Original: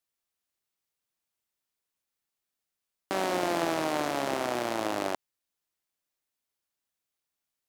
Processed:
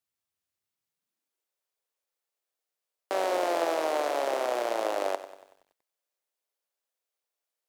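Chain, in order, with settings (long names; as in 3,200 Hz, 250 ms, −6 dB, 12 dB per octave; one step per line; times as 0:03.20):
high-pass filter sweep 86 Hz → 500 Hz, 0:00.74–0:01.49
feedback echo at a low word length 94 ms, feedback 55%, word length 9 bits, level −13.5 dB
level −2.5 dB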